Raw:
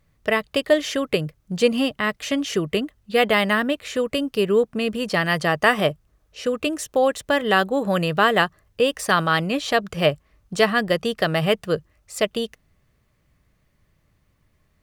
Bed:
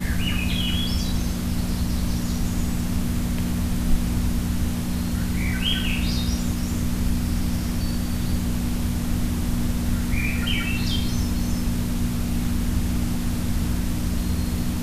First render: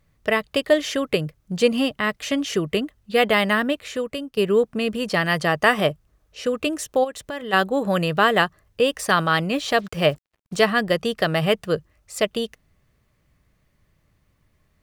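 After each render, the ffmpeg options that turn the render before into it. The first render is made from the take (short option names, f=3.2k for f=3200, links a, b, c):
-filter_complex "[0:a]asplit=3[a][b][c];[a]afade=t=out:st=7.03:d=0.02[d];[b]acompressor=threshold=-32dB:ratio=2.5:attack=3.2:release=140:knee=1:detection=peak,afade=t=in:st=7.03:d=0.02,afade=t=out:st=7.52:d=0.02[e];[c]afade=t=in:st=7.52:d=0.02[f];[d][e][f]amix=inputs=3:normalize=0,asettb=1/sr,asplit=3[g][h][i];[g]atrim=end=9.524[j];[h]atrim=start=9.52:end=10.61,asetpts=PTS-STARTPTS,afade=t=in:d=0.004:c=qsin,afade=t=out:st=1.086:d=0.004:c=qsin,acrusher=bits=7:mix=0:aa=0.5[k];[i]atrim=start=10.606[l];[j][k]acrossfade=d=0.004:c1=hsin:c2=qsin[m];[m][l]acrossfade=d=0.004:c1=qsin:c2=hsin,asplit=2[n][o];[n]atrim=end=4.37,asetpts=PTS-STARTPTS,afade=t=out:st=3.71:d=0.66:silence=0.281838[p];[o]atrim=start=4.37,asetpts=PTS-STARTPTS,afade=t=in:d=0.004:c=hsin:silence=0.281838[q];[p][q]concat=n=2:v=0:a=1"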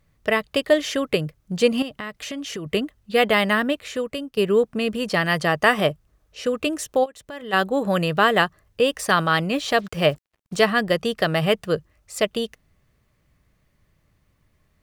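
-filter_complex "[0:a]asettb=1/sr,asplit=3[a][b][c];[a]atrim=end=1.824[d];[b]atrim=start=1.82:end=2.66,asetpts=PTS-STARTPTS,afade=t=in:d=0.004:c=qsin,afade=t=out:st=0.836:d=0.004:c=qsin,acompressor=threshold=-29dB:ratio=4:attack=3.2:release=140:knee=1:detection=peak[e];[c]atrim=start=2.656[f];[d][e]acrossfade=d=0.004:c1=hsin:c2=qsin[g];[g][f]acrossfade=d=0.004:c1=qsin:c2=hsin,asplit=2[h][i];[h]atrim=end=7.06,asetpts=PTS-STARTPTS,afade=t=out:st=7.056:d=0.004:c=hsin:silence=0.251189[j];[i]atrim=start=7.06,asetpts=PTS-STARTPTS,afade=t=in:d=0.63:silence=0.251189[k];[j][k]concat=n=2:v=0:a=1"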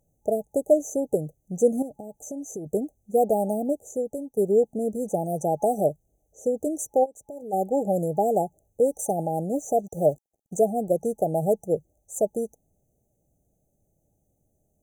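-af "afftfilt=real='re*(1-between(b*sr/4096,850,5900))':imag='im*(1-between(b*sr/4096,850,5900))':win_size=4096:overlap=0.75,lowshelf=f=180:g=-10"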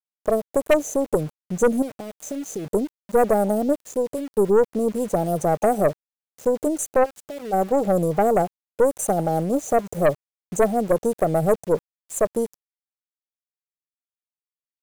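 -af "aeval=exprs='0.398*(cos(1*acos(clip(val(0)/0.398,-1,1)))-cos(1*PI/2))+0.0562*(cos(4*acos(clip(val(0)/0.398,-1,1)))-cos(4*PI/2))+0.0891*(cos(5*acos(clip(val(0)/0.398,-1,1)))-cos(5*PI/2))+0.0224*(cos(7*acos(clip(val(0)/0.398,-1,1)))-cos(7*PI/2))+0.00316*(cos(8*acos(clip(val(0)/0.398,-1,1)))-cos(8*PI/2))':c=same,aeval=exprs='val(0)*gte(abs(val(0)),0.0141)':c=same"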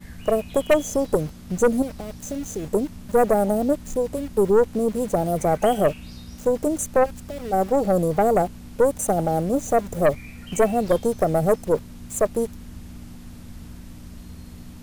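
-filter_complex "[1:a]volume=-16dB[a];[0:a][a]amix=inputs=2:normalize=0"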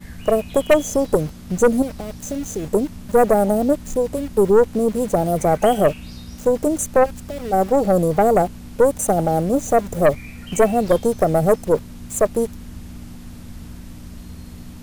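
-af "volume=3.5dB"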